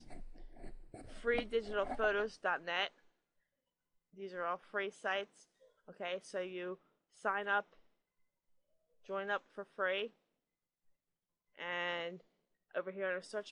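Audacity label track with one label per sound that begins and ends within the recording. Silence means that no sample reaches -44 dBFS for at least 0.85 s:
4.200000	7.600000	sound
9.090000	10.070000	sound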